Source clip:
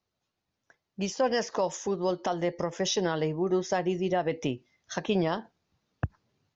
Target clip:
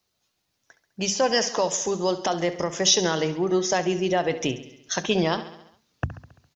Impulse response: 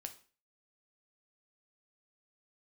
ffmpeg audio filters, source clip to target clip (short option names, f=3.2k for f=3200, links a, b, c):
-af "highshelf=f=2.9k:g=11,bandreject=f=50:t=h:w=6,bandreject=f=100:t=h:w=6,bandreject=f=150:t=h:w=6,bandreject=f=200:t=h:w=6,bandreject=f=250:t=h:w=6,aecho=1:1:68|136|204|272|340|408:0.2|0.12|0.0718|0.0431|0.0259|0.0155,volume=3.5dB"